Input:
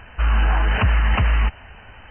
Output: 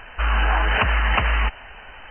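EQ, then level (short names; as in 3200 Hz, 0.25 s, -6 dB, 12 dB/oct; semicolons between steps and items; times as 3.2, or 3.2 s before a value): bell 81 Hz -10.5 dB 1.5 oct; bell 180 Hz -7 dB 1.8 oct; +4.0 dB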